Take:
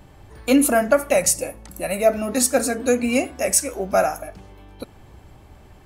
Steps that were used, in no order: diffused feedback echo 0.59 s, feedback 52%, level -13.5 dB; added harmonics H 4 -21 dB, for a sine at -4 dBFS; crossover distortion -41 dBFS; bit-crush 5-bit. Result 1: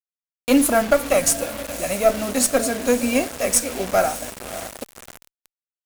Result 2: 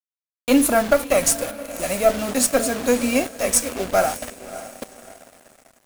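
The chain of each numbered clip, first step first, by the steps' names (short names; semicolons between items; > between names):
diffused feedback echo > bit-crush > crossover distortion > added harmonics; added harmonics > bit-crush > diffused feedback echo > crossover distortion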